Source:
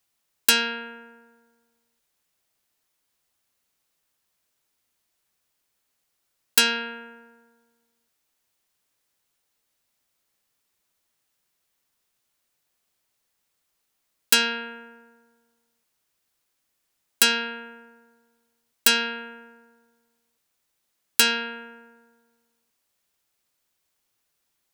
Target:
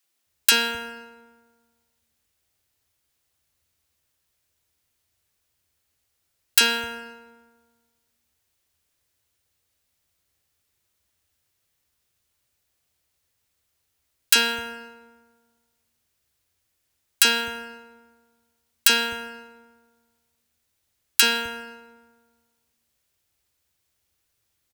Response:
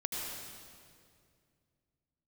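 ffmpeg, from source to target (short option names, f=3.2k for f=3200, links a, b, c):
-filter_complex "[0:a]equalizer=f=78:t=o:w=1.3:g=14.5,acrossover=split=200|1000[a][b][c];[b]adelay=30[d];[a]adelay=260[e];[e][d][c]amix=inputs=3:normalize=0,asplit=2[f][g];[1:a]atrim=start_sample=2205,asetrate=88200,aresample=44100[h];[g][h]afir=irnorm=-1:irlink=0,volume=-9.5dB[i];[f][i]amix=inputs=2:normalize=0"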